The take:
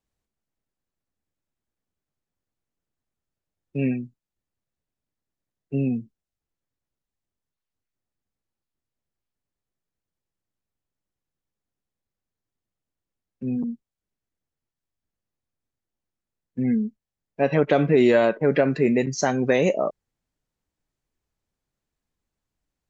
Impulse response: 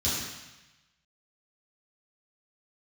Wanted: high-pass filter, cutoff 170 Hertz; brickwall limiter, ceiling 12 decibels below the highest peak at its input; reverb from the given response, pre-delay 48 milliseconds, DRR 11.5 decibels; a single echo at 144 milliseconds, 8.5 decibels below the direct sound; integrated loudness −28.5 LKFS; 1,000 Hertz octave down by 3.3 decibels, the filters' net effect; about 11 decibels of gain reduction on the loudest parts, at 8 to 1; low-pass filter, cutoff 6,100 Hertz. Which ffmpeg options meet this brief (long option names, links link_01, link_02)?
-filter_complex "[0:a]highpass=170,lowpass=6100,equalizer=frequency=1000:width_type=o:gain=-5.5,acompressor=threshold=-26dB:ratio=8,alimiter=level_in=3.5dB:limit=-24dB:level=0:latency=1,volume=-3.5dB,aecho=1:1:144:0.376,asplit=2[link_01][link_02];[1:a]atrim=start_sample=2205,adelay=48[link_03];[link_02][link_03]afir=irnorm=-1:irlink=0,volume=-20.5dB[link_04];[link_01][link_04]amix=inputs=2:normalize=0,volume=7dB"